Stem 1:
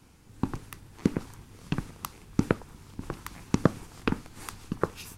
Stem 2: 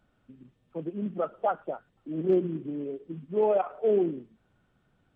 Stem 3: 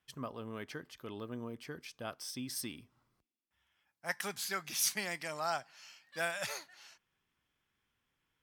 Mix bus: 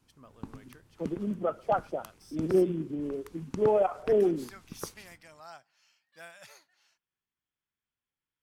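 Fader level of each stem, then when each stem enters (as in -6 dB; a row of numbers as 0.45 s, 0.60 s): -12.5 dB, 0.0 dB, -13.0 dB; 0.00 s, 0.25 s, 0.00 s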